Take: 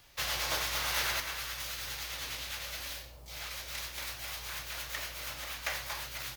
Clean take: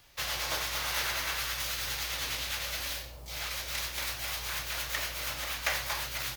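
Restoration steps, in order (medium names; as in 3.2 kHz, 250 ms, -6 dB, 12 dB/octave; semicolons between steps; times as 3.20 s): trim 0 dB, from 1.20 s +5 dB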